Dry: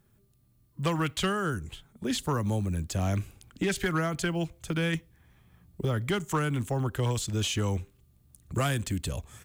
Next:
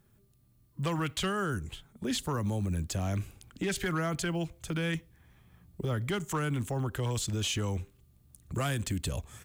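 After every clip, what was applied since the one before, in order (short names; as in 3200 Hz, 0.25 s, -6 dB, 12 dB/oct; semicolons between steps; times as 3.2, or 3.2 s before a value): limiter -24 dBFS, peak gain reduction 5 dB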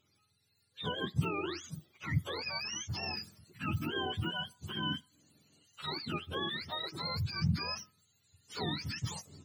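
spectrum mirrored in octaves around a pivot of 710 Hz; gain -3 dB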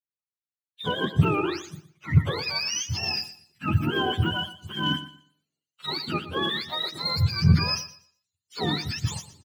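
sample leveller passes 1; on a send: feedback echo 0.119 s, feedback 40%, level -11 dB; on the sum: three-band expander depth 100%; gain +5.5 dB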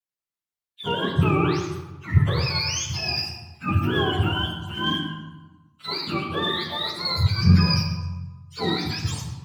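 wow and flutter 93 cents; on a send at -1 dB: reverb RT60 1.2 s, pre-delay 3 ms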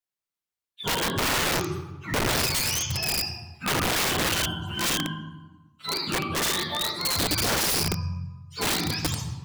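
wrapped overs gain 19.5 dB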